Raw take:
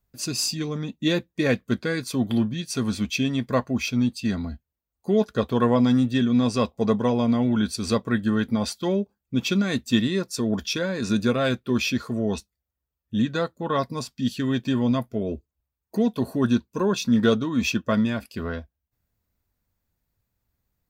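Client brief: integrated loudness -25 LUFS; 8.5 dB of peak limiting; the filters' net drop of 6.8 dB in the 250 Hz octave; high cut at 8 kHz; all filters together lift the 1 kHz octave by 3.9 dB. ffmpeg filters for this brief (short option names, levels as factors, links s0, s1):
-af "lowpass=8000,equalizer=f=250:t=o:g=-8,equalizer=f=1000:t=o:g=5,volume=1.5,alimiter=limit=0.237:level=0:latency=1"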